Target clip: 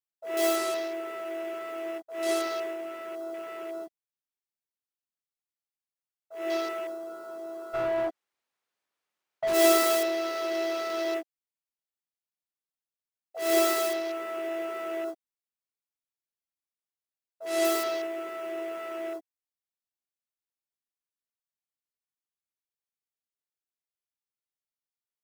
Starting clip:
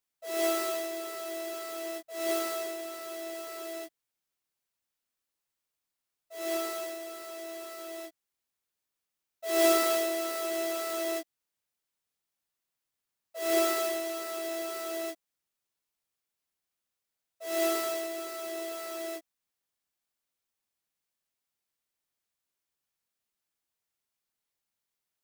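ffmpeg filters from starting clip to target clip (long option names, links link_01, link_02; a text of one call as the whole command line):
ffmpeg -i in.wav -filter_complex "[0:a]afwtdn=0.00562,asplit=3[link_01][link_02][link_03];[link_01]afade=type=out:start_time=7.73:duration=0.02[link_04];[link_02]asplit=2[link_05][link_06];[link_06]highpass=frequency=720:poles=1,volume=30dB,asoftclip=type=tanh:threshold=-22.5dB[link_07];[link_05][link_07]amix=inputs=2:normalize=0,lowpass=frequency=1400:poles=1,volume=-6dB,afade=type=in:start_time=7.73:duration=0.02,afade=type=out:start_time=9.53:duration=0.02[link_08];[link_03]afade=type=in:start_time=9.53:duration=0.02[link_09];[link_04][link_08][link_09]amix=inputs=3:normalize=0,volume=3dB" out.wav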